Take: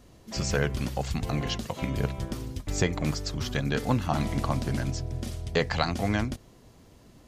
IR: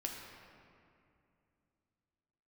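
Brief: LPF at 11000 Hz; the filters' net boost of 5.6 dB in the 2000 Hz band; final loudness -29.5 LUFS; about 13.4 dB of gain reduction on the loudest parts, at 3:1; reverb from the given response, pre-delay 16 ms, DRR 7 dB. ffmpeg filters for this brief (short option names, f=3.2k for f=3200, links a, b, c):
-filter_complex "[0:a]lowpass=11k,equalizer=f=2k:t=o:g=7,acompressor=threshold=-38dB:ratio=3,asplit=2[a][b];[1:a]atrim=start_sample=2205,adelay=16[c];[b][c]afir=irnorm=-1:irlink=0,volume=-7dB[d];[a][d]amix=inputs=2:normalize=0,volume=9dB"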